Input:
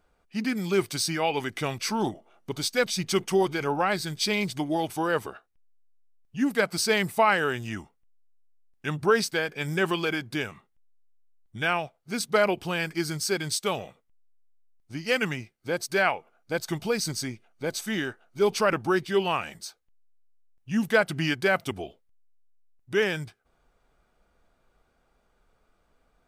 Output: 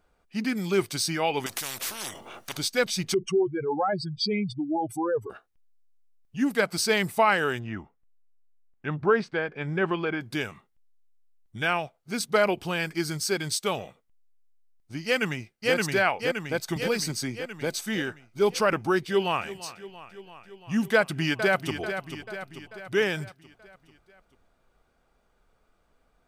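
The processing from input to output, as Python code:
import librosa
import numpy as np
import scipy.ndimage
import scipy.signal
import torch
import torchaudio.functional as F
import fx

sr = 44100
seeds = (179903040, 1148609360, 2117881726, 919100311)

y = fx.spectral_comp(x, sr, ratio=10.0, at=(1.46, 2.57))
y = fx.spec_expand(y, sr, power=2.9, at=(3.14, 5.3))
y = fx.lowpass(y, sr, hz=2000.0, slope=12, at=(7.58, 10.2), fade=0.02)
y = fx.echo_throw(y, sr, start_s=15.05, length_s=0.69, ms=570, feedback_pct=55, wet_db=-0.5)
y = fx.band_squash(y, sr, depth_pct=40, at=(16.76, 17.8))
y = fx.echo_throw(y, sr, start_s=19.07, length_s=0.46, ms=340, feedback_pct=75, wet_db=-16.0)
y = fx.echo_throw(y, sr, start_s=20.95, length_s=0.84, ms=440, feedback_pct=55, wet_db=-9.0)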